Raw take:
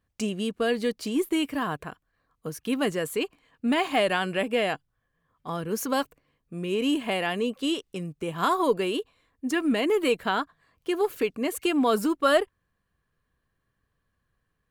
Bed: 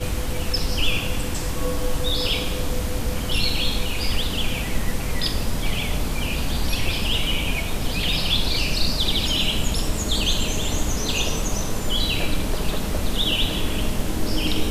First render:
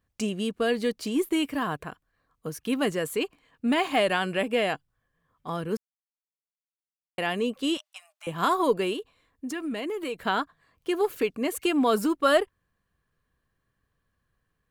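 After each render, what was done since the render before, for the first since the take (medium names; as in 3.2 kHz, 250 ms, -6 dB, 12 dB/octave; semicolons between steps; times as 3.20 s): 5.77–7.18 s: mute; 7.77–8.27 s: Chebyshev high-pass 610 Hz, order 10; 8.93–10.18 s: compression 3:1, threshold -31 dBFS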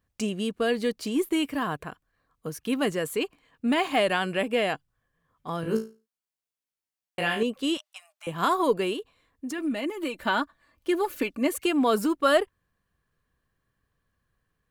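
5.61–7.43 s: flutter echo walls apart 3.1 m, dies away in 0.31 s; 9.58–11.57 s: comb 3.4 ms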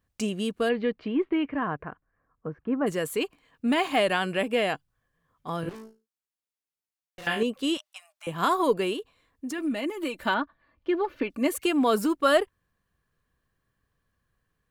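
0.68–2.86 s: low-pass 3 kHz -> 1.5 kHz 24 dB/octave; 5.69–7.27 s: valve stage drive 41 dB, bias 0.7; 10.34–11.30 s: distance through air 280 m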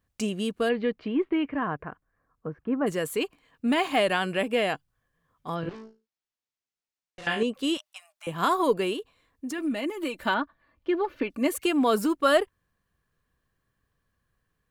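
5.54–7.53 s: low-pass 5.2 kHz -> 9.9 kHz 24 dB/octave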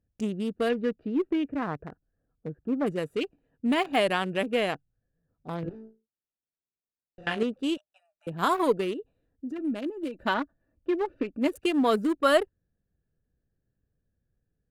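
local Wiener filter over 41 samples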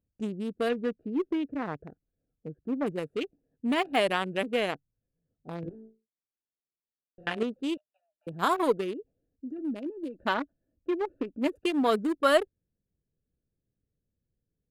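local Wiener filter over 41 samples; bass shelf 170 Hz -7 dB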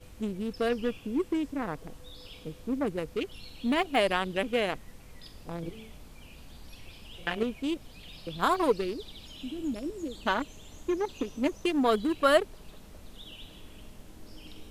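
add bed -25 dB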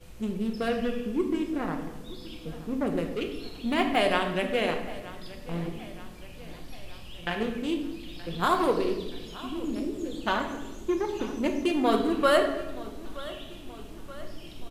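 feedback delay 925 ms, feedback 58%, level -18 dB; simulated room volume 480 m³, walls mixed, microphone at 0.93 m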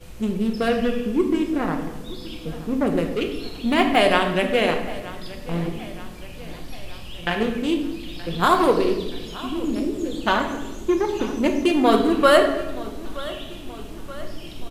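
trim +7 dB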